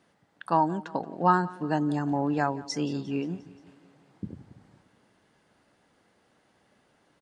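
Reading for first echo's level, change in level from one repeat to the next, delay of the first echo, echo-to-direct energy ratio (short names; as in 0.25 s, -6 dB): -20.0 dB, -4.5 dB, 0.176 s, -18.0 dB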